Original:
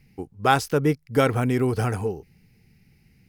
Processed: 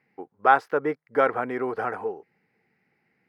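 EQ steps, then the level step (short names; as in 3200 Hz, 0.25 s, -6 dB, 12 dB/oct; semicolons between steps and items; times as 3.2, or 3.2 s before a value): HPF 560 Hz 12 dB/oct; air absorption 250 m; band shelf 4000 Hz -11.5 dB; +4.0 dB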